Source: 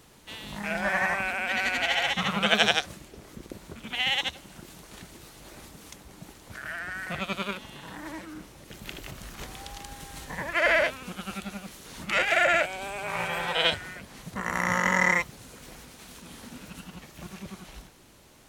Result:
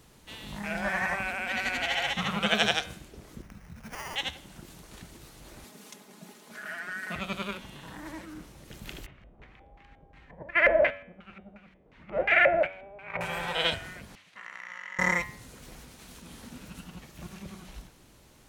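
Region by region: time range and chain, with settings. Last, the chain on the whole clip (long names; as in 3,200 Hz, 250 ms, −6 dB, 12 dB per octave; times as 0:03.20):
0:03.42–0:04.16: Chebyshev band-stop filter 210–1,800 Hz, order 3 + downward compressor, threshold −31 dBFS + sample-rate reduction 3,900 Hz
0:05.64–0:07.16: high-pass filter 190 Hz 24 dB per octave + comb filter 4.8 ms, depth 57%
0:09.06–0:13.21: noise gate −32 dBFS, range −12 dB + auto-filter low-pass square 2.8 Hz 610–2,200 Hz
0:14.15–0:14.99: resonant band-pass 2,500 Hz, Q 1.7 + downward compressor 4 to 1, threshold −35 dBFS
whole clip: low-shelf EQ 170 Hz +5.5 dB; hum removal 95.18 Hz, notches 39; level −3 dB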